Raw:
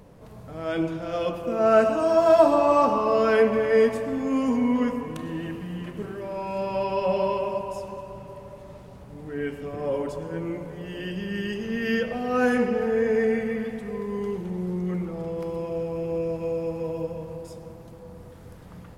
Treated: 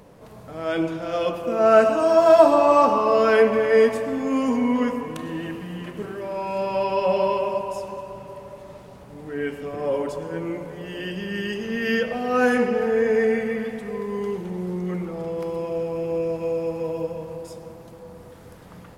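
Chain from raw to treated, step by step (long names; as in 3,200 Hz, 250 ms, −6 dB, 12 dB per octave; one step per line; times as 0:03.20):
low-shelf EQ 170 Hz −9 dB
level +4 dB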